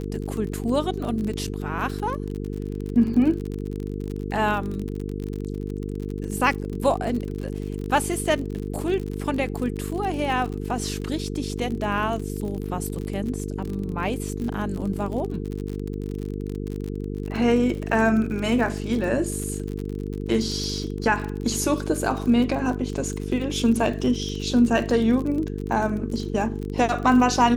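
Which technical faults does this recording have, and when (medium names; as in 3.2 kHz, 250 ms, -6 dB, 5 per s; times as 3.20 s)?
buzz 50 Hz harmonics 9 -30 dBFS
crackle 44 per s -29 dBFS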